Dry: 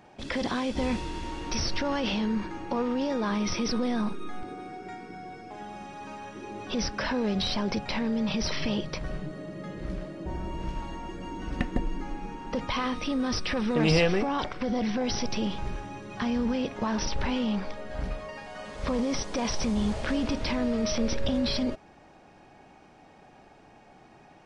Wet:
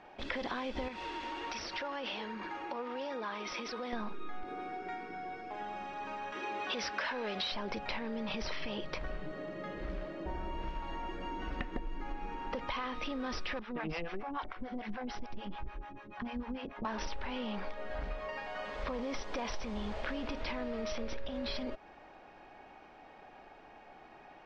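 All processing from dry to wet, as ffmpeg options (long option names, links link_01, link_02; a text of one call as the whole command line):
ffmpeg -i in.wav -filter_complex "[0:a]asettb=1/sr,asplit=3[link_01][link_02][link_03];[link_01]atrim=end=0.884[link_04];[link_02]atrim=start=0.88:end=3.93,asetpts=PTS-STARTPTS,afade=type=in:duration=0.004:curve=qsin,afade=type=out:start_time=3.046:duration=0.004:curve=qsin,highpass=frequency=390:poles=1,aphaser=in_gain=1:out_gain=1:delay=4.1:decay=0.33:speed=1.3:type=triangular,acompressor=threshold=-35dB:ratio=2.5:attack=3.2:release=140:knee=1:detection=peak[link_05];[link_03]atrim=start=3.926[link_06];[link_04][link_05]acrossfade=duration=0.004:curve1=hsin:curve2=qsin[link_07];[link_07][link_06]acrossfade=duration=0.004:curve1=qsin:curve2=hsin,asettb=1/sr,asplit=3[link_08][link_09][link_10];[link_08]atrim=end=6.324[link_11];[link_09]atrim=start=6.32:end=7.52,asetpts=PTS-STARTPTS,afade=type=in:duration=0.004:curve=qsin,afade=type=out:start_time=1.196:duration=0.004:curve=qsin,highpass=82,asplit=2[link_12][link_13];[link_13]highpass=frequency=720:poles=1,volume=10dB,asoftclip=type=tanh:threshold=-18dB[link_14];[link_12][link_14]amix=inputs=2:normalize=0,lowpass=frequency=2800:poles=1,volume=-6dB,highshelf=frequency=2700:gain=8.5[link_15];[link_10]atrim=start=7.516[link_16];[link_11][link_15]acrossfade=duration=0.004:curve1=hsin:curve2=qsin[link_17];[link_17][link_16]acrossfade=duration=0.004:curve1=qsin:curve2=hsin,asettb=1/sr,asplit=3[link_18][link_19][link_20];[link_18]atrim=end=13.594[link_21];[link_19]atrim=start=13.59:end=16.85,asetpts=PTS-STARTPTS,afade=type=in:duration=0.004:curve=qsin,afade=type=out:start_time=3.256:duration=0.004:curve=qsin,lowpass=frequency=2000:poles=1,equalizer=frequency=490:width=2:gain=-6.5,acrossover=split=490[link_22][link_23];[link_22]aeval=exprs='val(0)*(1-1/2+1/2*cos(2*PI*6.8*n/s))':channel_layout=same[link_24];[link_23]aeval=exprs='val(0)*(1-1/2-1/2*cos(2*PI*6.8*n/s))':channel_layout=same[link_25];[link_24][link_25]amix=inputs=2:normalize=0[link_26];[link_20]atrim=start=16.846[link_27];[link_21][link_26]acrossfade=duration=0.004:curve1=hsin:curve2=qsin[link_28];[link_28][link_27]acrossfade=duration=0.004:curve1=qsin:curve2=hsin,lowpass=3300,equalizer=frequency=130:width_type=o:width=2.3:gain=-13,acompressor=threshold=-36dB:ratio=6,volume=2dB" out.wav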